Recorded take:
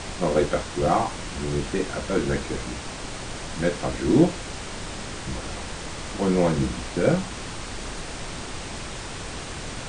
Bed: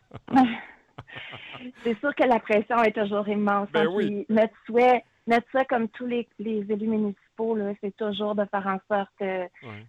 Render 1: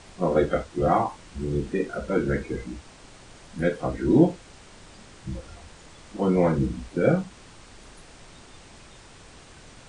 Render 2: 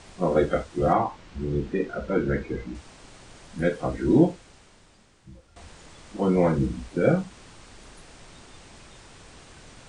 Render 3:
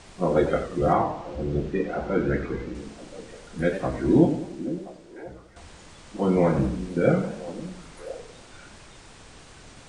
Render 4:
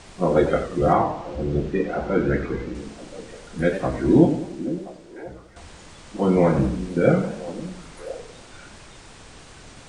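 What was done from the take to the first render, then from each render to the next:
noise print and reduce 14 dB
0.93–2.75 air absorption 94 m; 4.14–5.56 fade out quadratic, to -14.5 dB
delay with a stepping band-pass 0.513 s, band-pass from 240 Hz, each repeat 1.4 oct, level -10.5 dB; warbling echo 94 ms, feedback 45%, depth 181 cents, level -10 dB
gain +3 dB

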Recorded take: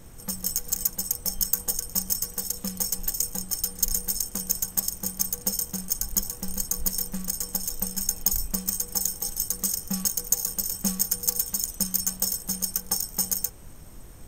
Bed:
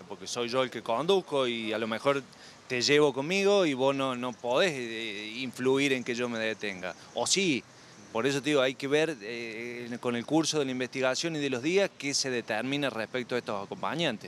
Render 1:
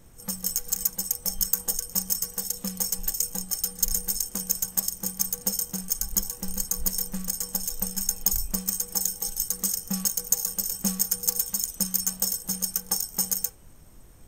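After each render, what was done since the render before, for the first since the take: noise print and reduce 6 dB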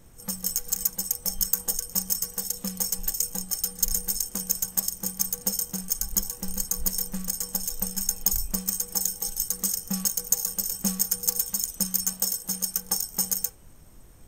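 12.13–12.75 low shelf 150 Hz -6 dB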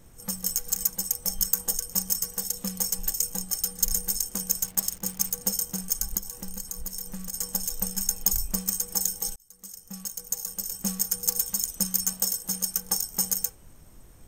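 4.64–5.31 backlash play -38 dBFS; 6.17–7.34 compressor 2.5:1, threshold -33 dBFS; 9.36–11.41 fade in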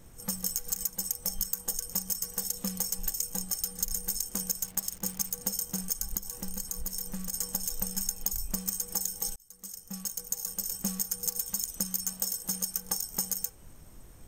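compressor, threshold -27 dBFS, peak gain reduction 10 dB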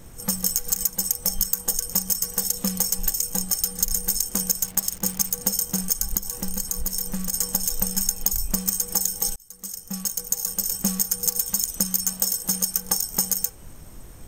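gain +8.5 dB; limiter -2 dBFS, peak gain reduction 2 dB

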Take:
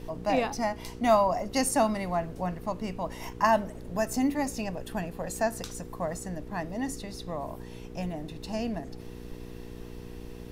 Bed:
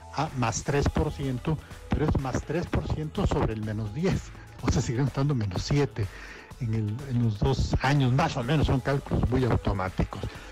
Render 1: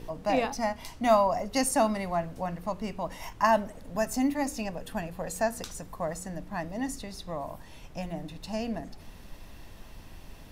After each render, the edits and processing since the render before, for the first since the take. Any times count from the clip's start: de-hum 60 Hz, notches 8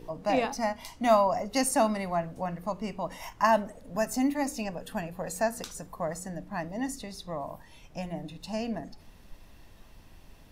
noise print and reduce 6 dB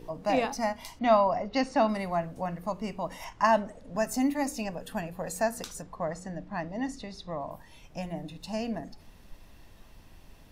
0.99–1.89 LPF 4600 Hz 24 dB/oct; 3.24–4.05 LPF 7500 Hz; 5.82–7.51 LPF 5300 Hz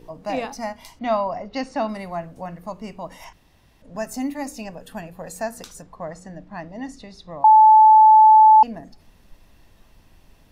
3.33–3.82 room tone; 7.44–8.63 bleep 869 Hz -7 dBFS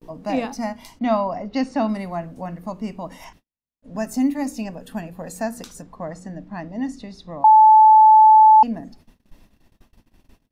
gate -49 dBFS, range -46 dB; bell 240 Hz +8 dB 0.93 oct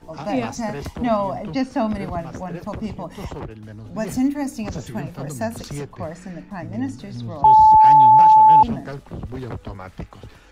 add bed -6.5 dB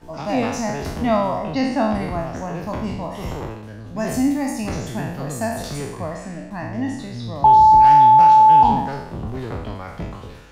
spectral trails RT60 0.86 s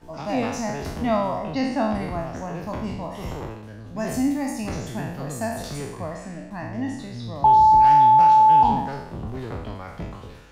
gain -3.5 dB

